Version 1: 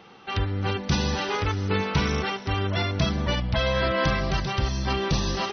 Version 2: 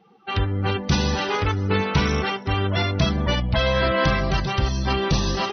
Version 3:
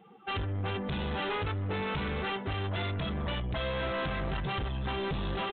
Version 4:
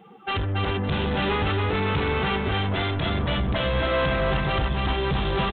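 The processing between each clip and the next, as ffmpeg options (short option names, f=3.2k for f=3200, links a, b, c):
-af "afftdn=nr=19:nf=-40,volume=3.5dB"
-af "acompressor=threshold=-23dB:ratio=6,aresample=8000,asoftclip=type=tanh:threshold=-29.5dB,aresample=44100"
-af "aecho=1:1:279|558|837|1116:0.708|0.198|0.0555|0.0155,volume=7dB"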